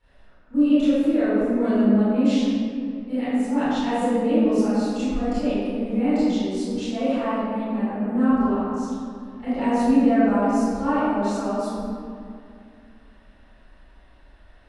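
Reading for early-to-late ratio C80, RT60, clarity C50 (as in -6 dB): -3.0 dB, 2.3 s, -6.5 dB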